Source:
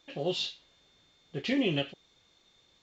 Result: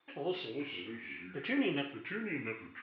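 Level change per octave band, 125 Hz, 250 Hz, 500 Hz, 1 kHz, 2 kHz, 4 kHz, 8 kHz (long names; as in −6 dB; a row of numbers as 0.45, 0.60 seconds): −8.0 dB, −3.0 dB, −3.5 dB, −0.5 dB, +1.5 dB, −8.0 dB, can't be measured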